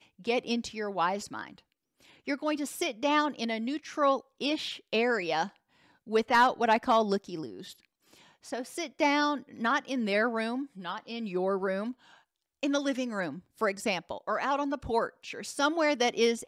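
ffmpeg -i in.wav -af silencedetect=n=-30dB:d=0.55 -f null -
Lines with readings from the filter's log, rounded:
silence_start: 1.44
silence_end: 2.28 | silence_duration: 0.84
silence_start: 5.45
silence_end: 6.12 | silence_duration: 0.67
silence_start: 7.45
silence_end: 8.53 | silence_duration: 1.08
silence_start: 11.90
silence_end: 12.63 | silence_duration: 0.73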